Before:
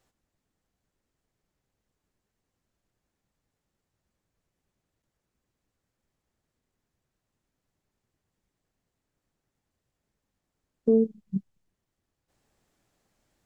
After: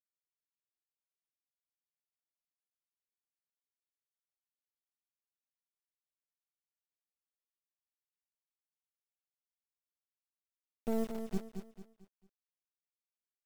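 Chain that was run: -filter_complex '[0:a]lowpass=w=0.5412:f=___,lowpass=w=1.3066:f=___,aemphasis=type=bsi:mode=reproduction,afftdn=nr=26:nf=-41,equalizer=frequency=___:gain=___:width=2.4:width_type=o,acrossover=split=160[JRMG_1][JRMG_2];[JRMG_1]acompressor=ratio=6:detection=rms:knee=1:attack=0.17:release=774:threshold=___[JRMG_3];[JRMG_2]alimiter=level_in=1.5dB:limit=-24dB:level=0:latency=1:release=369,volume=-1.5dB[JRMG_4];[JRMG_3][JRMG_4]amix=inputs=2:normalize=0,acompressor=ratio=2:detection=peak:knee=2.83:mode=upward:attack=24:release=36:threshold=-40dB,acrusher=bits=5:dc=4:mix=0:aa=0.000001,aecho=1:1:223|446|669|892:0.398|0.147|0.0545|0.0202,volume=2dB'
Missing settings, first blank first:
1k, 1k, 310, -6.5, -51dB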